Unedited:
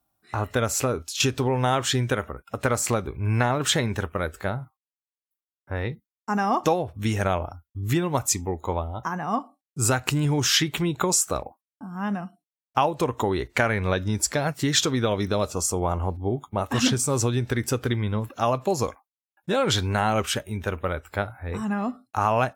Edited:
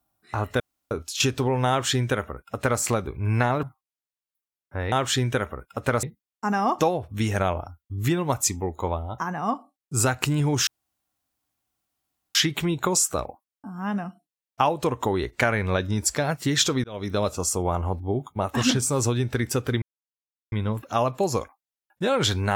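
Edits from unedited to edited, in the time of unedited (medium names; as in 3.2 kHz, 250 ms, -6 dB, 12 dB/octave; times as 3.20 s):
0.60–0.91 s: room tone
1.69–2.80 s: copy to 5.88 s
3.63–4.59 s: delete
10.52 s: insert room tone 1.68 s
15.01–15.35 s: fade in
17.99 s: insert silence 0.70 s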